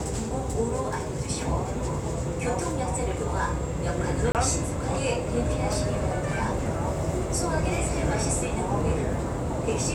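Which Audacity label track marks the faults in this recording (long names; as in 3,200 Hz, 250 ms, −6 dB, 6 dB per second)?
4.320000	4.350000	drop-out 28 ms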